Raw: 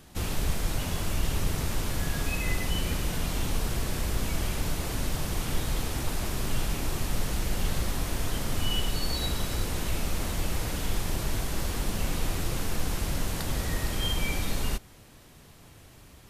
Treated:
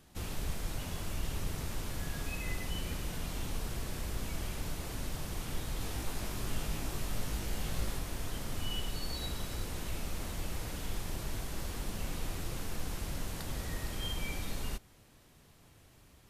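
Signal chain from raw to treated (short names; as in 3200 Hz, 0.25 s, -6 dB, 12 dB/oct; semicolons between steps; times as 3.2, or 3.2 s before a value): 5.79–7.99 doubler 19 ms -3 dB; gain -8.5 dB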